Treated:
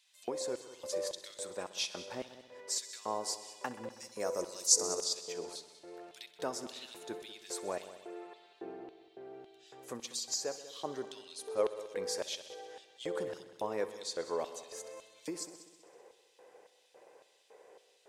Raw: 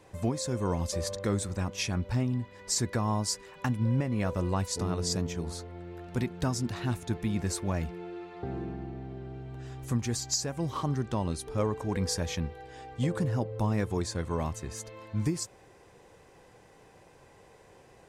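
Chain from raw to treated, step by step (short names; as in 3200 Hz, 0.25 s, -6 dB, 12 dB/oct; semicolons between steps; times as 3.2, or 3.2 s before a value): 3.9–5.04 resonant high shelf 4400 Hz +11 dB, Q 3; LFO high-pass square 1.8 Hz 470–3500 Hz; multi-head echo 64 ms, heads all three, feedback 49%, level -18 dB; gain -6 dB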